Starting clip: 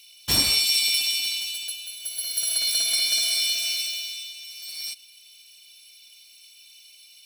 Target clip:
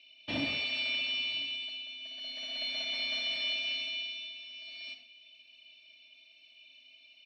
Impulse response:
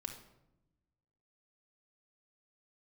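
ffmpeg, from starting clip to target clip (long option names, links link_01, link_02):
-filter_complex "[0:a]equalizer=frequency=270:width_type=o:width=0.95:gain=8.5,asoftclip=type=tanh:threshold=-20dB,highpass=140,equalizer=frequency=200:width_type=q:width=4:gain=-6,equalizer=frequency=360:width_type=q:width=4:gain=-9,equalizer=frequency=650:width_type=q:width=4:gain=6,equalizer=frequency=960:width_type=q:width=4:gain=-6,equalizer=frequency=1400:width_type=q:width=4:gain=-10,equalizer=frequency=2400:width_type=q:width=4:gain=3,lowpass=frequency=3100:width=0.5412,lowpass=frequency=3100:width=1.3066,aecho=1:1:1005:0.0668[link_01];[1:a]atrim=start_sample=2205,atrim=end_sample=6174[link_02];[link_01][link_02]afir=irnorm=-1:irlink=0"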